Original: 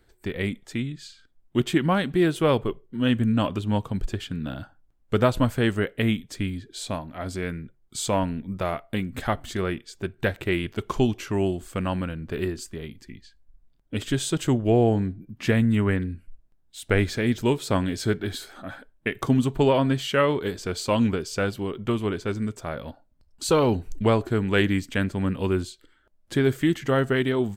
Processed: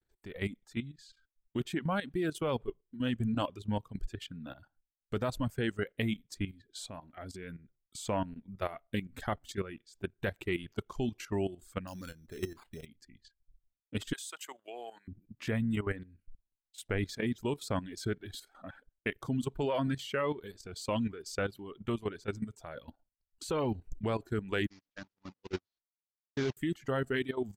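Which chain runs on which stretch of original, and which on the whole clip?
0:11.87–0:12.86: de-essing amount 95% + sample-rate reduction 5,800 Hz
0:14.13–0:15.08: high-pass filter 1,100 Hz + high-shelf EQ 7,700 Hz +8 dB
0:24.67–0:26.57: linear delta modulator 32 kbit/s, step −23 dBFS + low-shelf EQ 60 Hz −7 dB + noise gate −22 dBFS, range −46 dB
whole clip: downward expander −52 dBFS; reverb reduction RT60 1.3 s; output level in coarse steps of 13 dB; level −4.5 dB

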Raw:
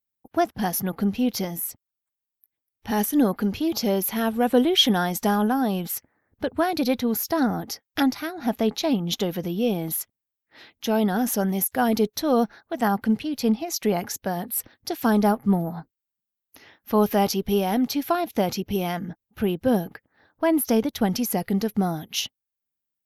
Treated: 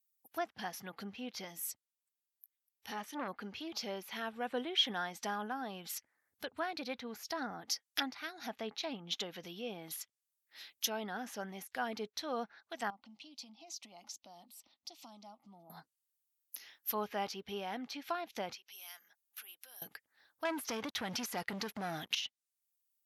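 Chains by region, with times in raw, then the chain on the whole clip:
0:01.52–0:03.28: high-shelf EQ 5,000 Hz −7.5 dB + saturating transformer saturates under 640 Hz
0:12.90–0:15.70: downward compressor 3 to 1, threshold −35 dBFS + high-frequency loss of the air 150 metres + phaser with its sweep stopped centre 440 Hz, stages 6
0:18.55–0:19.82: downward compressor 3 to 1, threshold −38 dBFS + high-pass filter 1,000 Hz
0:20.45–0:22.15: high-shelf EQ 4,000 Hz +9 dB + downward compressor, threshold −22 dBFS + leveller curve on the samples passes 3
whole clip: treble cut that deepens with the level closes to 2,000 Hz, closed at −21 dBFS; high-pass filter 63 Hz; first-order pre-emphasis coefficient 0.97; level +4.5 dB

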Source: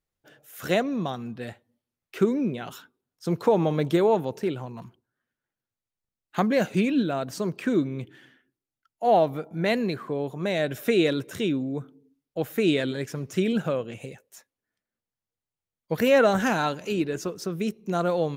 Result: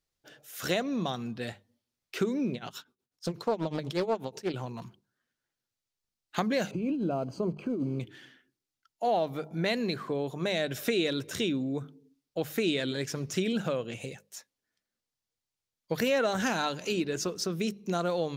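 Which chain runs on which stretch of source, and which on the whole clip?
0:02.54–0:04.54: amplitude tremolo 8.2 Hz, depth 90% + highs frequency-modulated by the lows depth 0.43 ms
0:06.71–0:08.00: one scale factor per block 5 bits + compressor whose output falls as the input rises −26 dBFS + moving average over 24 samples
whole clip: parametric band 4,900 Hz +8 dB 1.5 octaves; mains-hum notches 50/100/150/200 Hz; downward compressor 2.5 to 1, threshold −26 dBFS; level −1 dB

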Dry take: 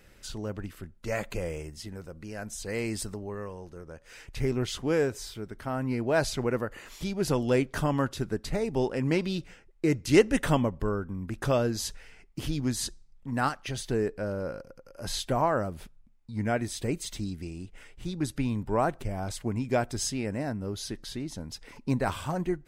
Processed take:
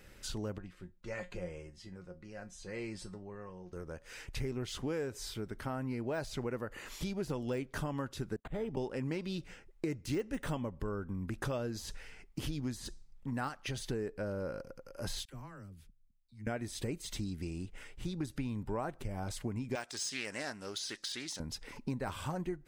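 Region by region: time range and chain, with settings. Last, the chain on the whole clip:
0:00.58–0:03.73: high-frequency loss of the air 73 metres + tuned comb filter 180 Hz, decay 0.19 s, mix 80%
0:08.36–0:08.77: noise gate −43 dBFS, range −27 dB + volume swells 128 ms + linearly interpolated sample-rate reduction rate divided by 8×
0:15.25–0:16.47: guitar amp tone stack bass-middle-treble 6-0-2 + all-pass dispersion lows, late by 42 ms, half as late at 400 Hz
0:19.75–0:21.40: meter weighting curve ITU-R 468 + highs frequency-modulated by the lows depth 0.13 ms
whole clip: de-essing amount 80%; notch filter 680 Hz, Q 17; downward compressor 4 to 1, threshold −35 dBFS

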